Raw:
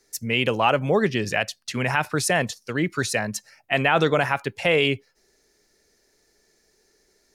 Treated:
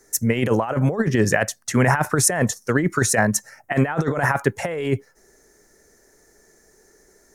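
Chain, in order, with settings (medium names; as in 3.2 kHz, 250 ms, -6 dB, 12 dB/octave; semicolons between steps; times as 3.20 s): compressor with a negative ratio -24 dBFS, ratio -0.5; high-order bell 3.4 kHz -13 dB 1.3 oct; trim +6.5 dB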